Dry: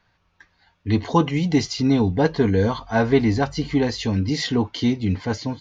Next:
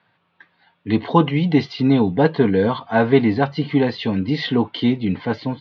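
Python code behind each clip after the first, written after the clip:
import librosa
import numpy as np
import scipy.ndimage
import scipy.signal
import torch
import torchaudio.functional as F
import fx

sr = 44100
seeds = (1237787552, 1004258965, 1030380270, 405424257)

y = scipy.signal.sosfilt(scipy.signal.ellip(3, 1.0, 40, [130.0, 3600.0], 'bandpass', fs=sr, output='sos'), x)
y = y * 10.0 ** (3.5 / 20.0)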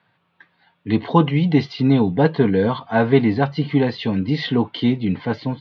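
y = fx.peak_eq(x, sr, hz=140.0, db=3.5, octaves=0.77)
y = y * 10.0 ** (-1.0 / 20.0)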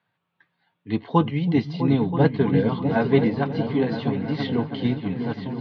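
y = fx.echo_opening(x, sr, ms=326, hz=200, octaves=2, feedback_pct=70, wet_db=-3)
y = fx.upward_expand(y, sr, threshold_db=-25.0, expansion=1.5)
y = y * 10.0 ** (-3.5 / 20.0)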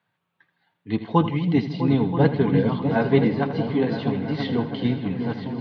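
y = fx.echo_feedback(x, sr, ms=80, feedback_pct=53, wet_db=-13.0)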